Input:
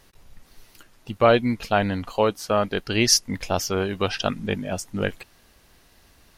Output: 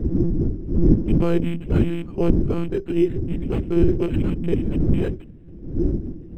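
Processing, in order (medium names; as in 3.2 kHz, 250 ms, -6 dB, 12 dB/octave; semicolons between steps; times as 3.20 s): rattle on loud lows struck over -29 dBFS, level -15 dBFS; wind noise 200 Hz -24 dBFS; resonant low shelf 510 Hz +10 dB, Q 3; on a send at -15 dB: reverberation RT60 0.20 s, pre-delay 13 ms; on the sum: monotone LPC vocoder at 8 kHz 170 Hz; decimation joined by straight lines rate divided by 8×; trim -10.5 dB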